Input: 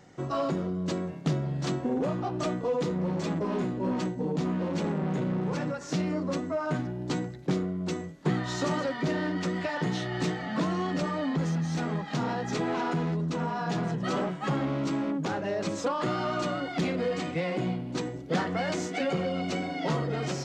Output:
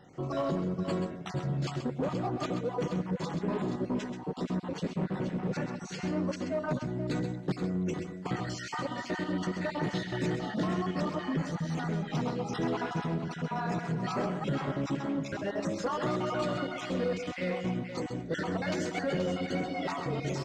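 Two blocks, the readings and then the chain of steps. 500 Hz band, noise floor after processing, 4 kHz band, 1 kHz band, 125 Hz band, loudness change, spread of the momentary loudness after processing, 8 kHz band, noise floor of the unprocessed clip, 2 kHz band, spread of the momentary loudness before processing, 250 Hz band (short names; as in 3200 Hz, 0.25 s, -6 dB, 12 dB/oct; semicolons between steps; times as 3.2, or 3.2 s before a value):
-3.0 dB, -42 dBFS, -3.5 dB, -3.0 dB, -3.0 dB, -3.0 dB, 3 LU, -4.5 dB, -39 dBFS, -3.0 dB, 2 LU, -3.0 dB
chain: random spectral dropouts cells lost 39%; high shelf 6500 Hz -4.5 dB; in parallel at -11 dB: wavefolder -28.5 dBFS; on the sum: tapped delay 0.131/0.478 s -8.5/-9 dB; gain -3 dB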